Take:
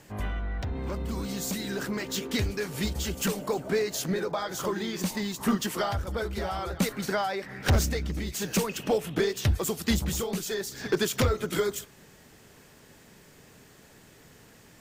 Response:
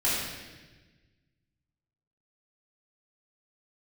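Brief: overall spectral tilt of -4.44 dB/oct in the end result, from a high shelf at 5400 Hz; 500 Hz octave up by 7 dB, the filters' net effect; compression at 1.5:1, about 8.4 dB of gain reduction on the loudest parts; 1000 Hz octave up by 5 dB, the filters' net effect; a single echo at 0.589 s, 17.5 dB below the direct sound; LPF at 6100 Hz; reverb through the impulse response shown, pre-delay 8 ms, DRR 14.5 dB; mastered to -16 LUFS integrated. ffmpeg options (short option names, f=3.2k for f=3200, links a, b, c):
-filter_complex "[0:a]lowpass=6.1k,equalizer=f=500:t=o:g=8,equalizer=f=1k:t=o:g=3.5,highshelf=f=5.4k:g=8,acompressor=threshold=-39dB:ratio=1.5,aecho=1:1:589:0.133,asplit=2[a][b];[1:a]atrim=start_sample=2205,adelay=8[c];[b][c]afir=irnorm=-1:irlink=0,volume=-26dB[d];[a][d]amix=inputs=2:normalize=0,volume=16dB"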